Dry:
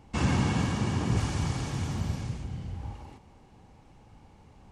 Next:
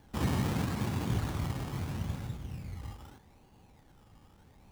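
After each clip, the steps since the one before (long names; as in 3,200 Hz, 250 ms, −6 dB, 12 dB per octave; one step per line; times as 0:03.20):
sample-and-hold swept by an LFO 17×, swing 60% 0.78 Hz
level −4.5 dB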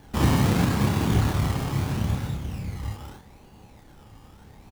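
double-tracking delay 29 ms −3.5 dB
level +8.5 dB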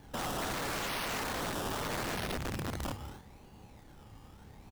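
wrap-around overflow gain 26.5 dB
level −4.5 dB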